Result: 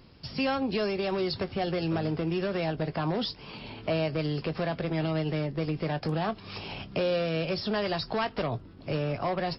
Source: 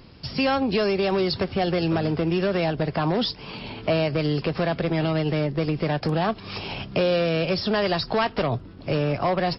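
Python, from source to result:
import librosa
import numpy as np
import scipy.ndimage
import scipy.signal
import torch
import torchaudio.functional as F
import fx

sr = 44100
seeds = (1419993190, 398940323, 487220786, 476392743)

y = fx.doubler(x, sr, ms=19.0, db=-14)
y = y * librosa.db_to_amplitude(-6.5)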